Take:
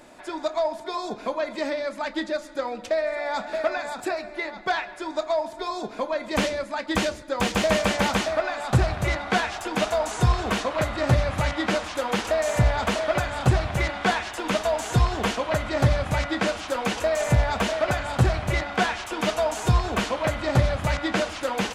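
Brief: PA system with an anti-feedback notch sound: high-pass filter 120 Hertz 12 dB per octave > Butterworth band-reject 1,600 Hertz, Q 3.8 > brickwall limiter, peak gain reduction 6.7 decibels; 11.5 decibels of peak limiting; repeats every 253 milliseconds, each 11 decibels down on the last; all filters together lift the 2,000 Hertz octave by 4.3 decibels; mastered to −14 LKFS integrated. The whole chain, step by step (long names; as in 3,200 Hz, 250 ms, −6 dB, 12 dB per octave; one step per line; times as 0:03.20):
parametric band 2,000 Hz +8.5 dB
brickwall limiter −17.5 dBFS
high-pass filter 120 Hz 12 dB per octave
Butterworth band-reject 1,600 Hz, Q 3.8
repeating echo 253 ms, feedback 28%, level −11 dB
level +16.5 dB
brickwall limiter −5.5 dBFS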